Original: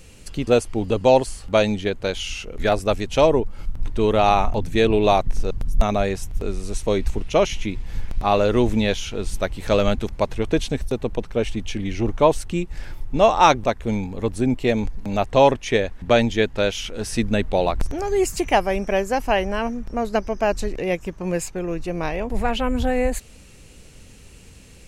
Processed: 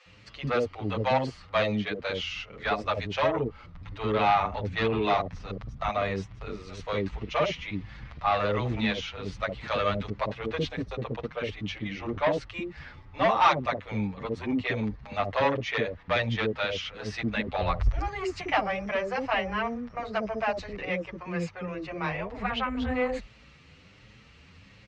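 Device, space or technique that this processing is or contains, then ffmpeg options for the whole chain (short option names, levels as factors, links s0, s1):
barber-pole flanger into a guitar amplifier: -filter_complex "[0:a]asplit=2[s0][s1];[s1]adelay=7.6,afreqshift=1.3[s2];[s0][s2]amix=inputs=2:normalize=1,asoftclip=type=tanh:threshold=0.188,highpass=82,equalizer=f=230:t=q:w=4:g=-4,equalizer=f=370:t=q:w=4:g=-6,equalizer=f=1200:t=q:w=4:g=7,equalizer=f=2000:t=q:w=4:g=5,lowpass=f=4600:w=0.5412,lowpass=f=4600:w=1.3066,acrossover=split=530[s3][s4];[s3]adelay=60[s5];[s5][s4]amix=inputs=2:normalize=0,asplit=3[s6][s7][s8];[s6]afade=t=out:st=17.61:d=0.02[s9];[s7]asubboost=boost=12:cutoff=63,afade=t=in:st=17.61:d=0.02,afade=t=out:st=18.07:d=0.02[s10];[s8]afade=t=in:st=18.07:d=0.02[s11];[s9][s10][s11]amix=inputs=3:normalize=0,volume=0.891"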